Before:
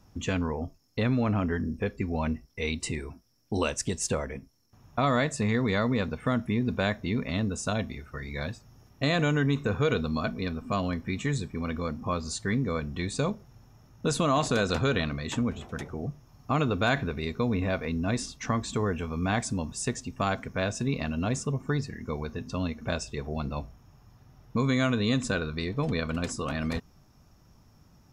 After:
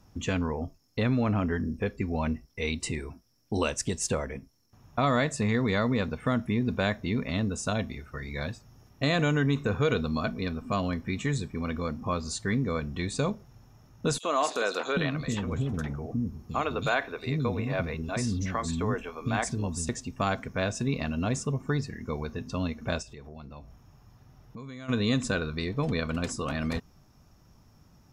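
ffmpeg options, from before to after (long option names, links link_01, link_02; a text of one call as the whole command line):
ffmpeg -i in.wav -filter_complex "[0:a]asettb=1/sr,asplit=3[link_01][link_02][link_03];[link_01]atrim=end=14.184[link_04];[link_02]atrim=start=14.18:end=19.89,asetpts=PTS-STARTPTS,afade=type=in:duration=0.004:curve=qsin,afade=type=out:start_time=5.706:duration=0.004:curve=qsin,acrossover=split=320|3900[link_05][link_06][link_07];[link_06]adelay=50[link_08];[link_05]adelay=770[link_09];[link_09][link_08][link_07]amix=inputs=3:normalize=0,atrim=end_sample=251811[link_10];[link_03]atrim=start=19.886[link_11];[link_04][link_10]acrossfade=duration=0.004:curve1=hsin:curve2=qsin[link_12];[link_12][link_11]acrossfade=duration=0.004:curve1=qsin:curve2=hsin,asplit=3[link_13][link_14][link_15];[link_13]afade=type=out:start_time=23.01:duration=0.02[link_16];[link_14]acompressor=threshold=-45dB:ratio=3:attack=3.2:release=140:knee=1:detection=peak,afade=type=in:start_time=23.01:duration=0.02,afade=type=out:start_time=24.88:duration=0.02[link_17];[link_15]afade=type=in:start_time=24.88:duration=0.02[link_18];[link_16][link_17][link_18]amix=inputs=3:normalize=0" out.wav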